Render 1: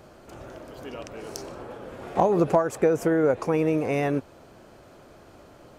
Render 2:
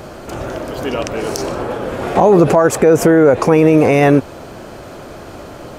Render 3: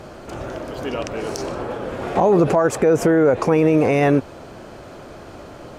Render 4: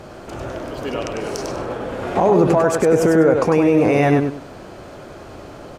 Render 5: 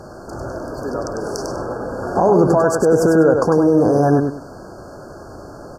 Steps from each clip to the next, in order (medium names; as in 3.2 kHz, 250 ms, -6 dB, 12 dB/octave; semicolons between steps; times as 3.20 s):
loudness maximiser +18.5 dB; trim -1 dB
treble shelf 12 kHz -11.5 dB; trim -5.5 dB
feedback delay 99 ms, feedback 24%, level -5 dB
brick-wall FIR band-stop 1.7–4.3 kHz; trim +1 dB